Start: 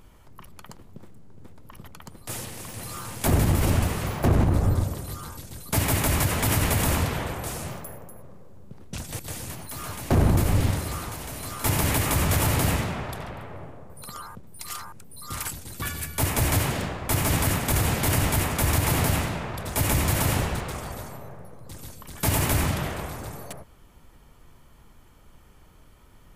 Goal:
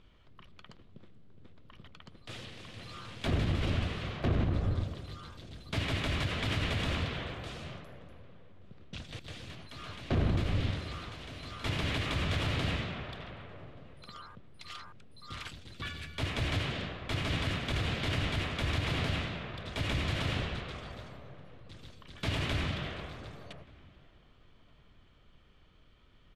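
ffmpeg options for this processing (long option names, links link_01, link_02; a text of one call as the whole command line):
ffmpeg -i in.wav -filter_complex "[0:a]lowpass=frequency=3500:width_type=q:width=2.3,equalizer=frequency=880:width=4.4:gain=-7.5,asplit=2[link_01][link_02];[link_02]adelay=1178,lowpass=frequency=1800:poles=1,volume=-23.5dB,asplit=2[link_03][link_04];[link_04]adelay=1178,lowpass=frequency=1800:poles=1,volume=0.3[link_05];[link_01][link_03][link_05]amix=inputs=3:normalize=0,volume=-9dB" out.wav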